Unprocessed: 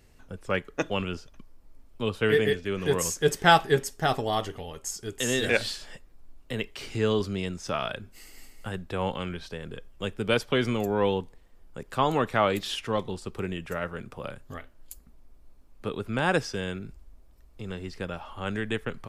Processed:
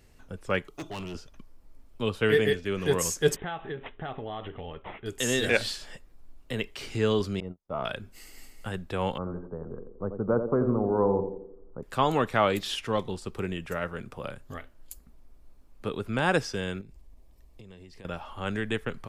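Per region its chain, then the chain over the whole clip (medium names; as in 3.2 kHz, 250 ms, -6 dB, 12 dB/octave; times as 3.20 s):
0.68–1.15 s: static phaser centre 340 Hz, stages 8 + hard clipper -33 dBFS + tape noise reduction on one side only encoder only
3.36–5.06 s: low-pass 3.5 kHz 6 dB/octave + compression 5:1, threshold -33 dBFS + careless resampling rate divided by 6×, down none, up filtered
7.40–7.85 s: gate -31 dBFS, range -46 dB + Savitzky-Golay filter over 65 samples + transient shaper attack -3 dB, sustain +8 dB
9.18–11.83 s: steep low-pass 1.3 kHz 48 dB/octave + band-passed feedback delay 86 ms, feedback 55%, band-pass 350 Hz, level -5.5 dB
16.81–18.05 s: peaking EQ 1.4 kHz -14.5 dB 0.21 oct + compression, threshold -45 dBFS
whole clip: none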